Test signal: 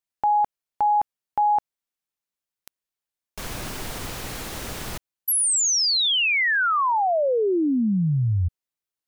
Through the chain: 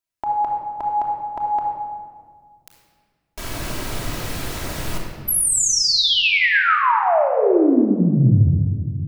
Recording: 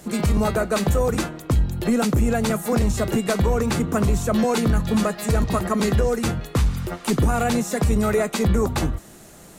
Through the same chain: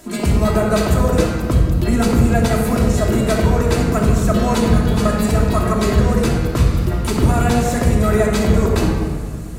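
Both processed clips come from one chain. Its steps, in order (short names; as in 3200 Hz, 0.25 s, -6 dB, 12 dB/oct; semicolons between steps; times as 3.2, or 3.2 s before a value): shoebox room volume 2900 m³, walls mixed, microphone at 2.9 m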